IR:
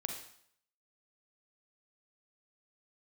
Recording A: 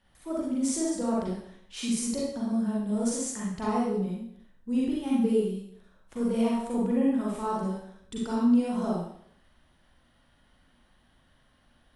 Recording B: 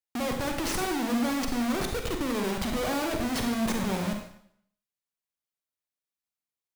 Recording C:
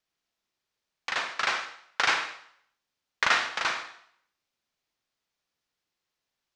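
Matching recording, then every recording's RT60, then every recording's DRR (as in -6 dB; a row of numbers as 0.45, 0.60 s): B; 0.65, 0.65, 0.65 s; -5.5, 3.0, 7.5 dB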